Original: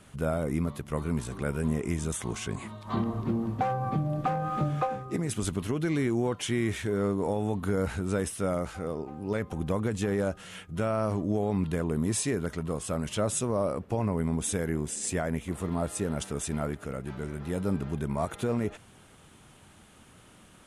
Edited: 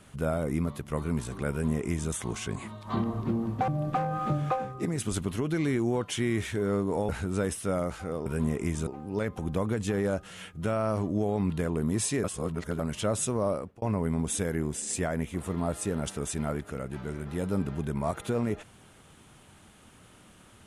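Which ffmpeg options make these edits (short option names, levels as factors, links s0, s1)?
-filter_complex "[0:a]asplit=8[s0][s1][s2][s3][s4][s5][s6][s7];[s0]atrim=end=3.682[s8];[s1]atrim=start=3.988:end=7.402[s9];[s2]atrim=start=7.838:end=9.012[s10];[s3]atrim=start=1.498:end=2.112[s11];[s4]atrim=start=9.008:end=12.382[s12];[s5]atrim=start=12.378:end=12.932,asetpts=PTS-STARTPTS,areverse[s13];[s6]atrim=start=12.928:end=13.96,asetpts=PTS-STARTPTS,afade=t=out:st=0.712:d=0.32[s14];[s7]atrim=start=13.96,asetpts=PTS-STARTPTS,afade=t=in:d=0.004:c=hsin[s15];[s8][s9]acrossfade=d=0.004:c1=hsin:c2=hsin[s16];[s16][s10]acrossfade=d=0.004:c1=hsin:c2=hsin[s17];[s17][s11]acrossfade=d=0.004:c1=hsin:c2=hsin[s18];[s18][s12]acrossfade=d=0.004:c1=hsin:c2=hsin[s19];[s19][s13]acrossfade=d=0.004:c1=hsin:c2=hsin[s20];[s14][s15]concat=n=2:v=0:a=1[s21];[s20][s21]acrossfade=d=0.004:c1=hsin:c2=hsin"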